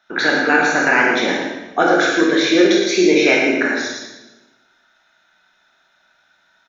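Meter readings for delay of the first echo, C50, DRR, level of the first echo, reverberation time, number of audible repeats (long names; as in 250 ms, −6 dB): 113 ms, 0.5 dB, −3.5 dB, −6.0 dB, 1.0 s, 1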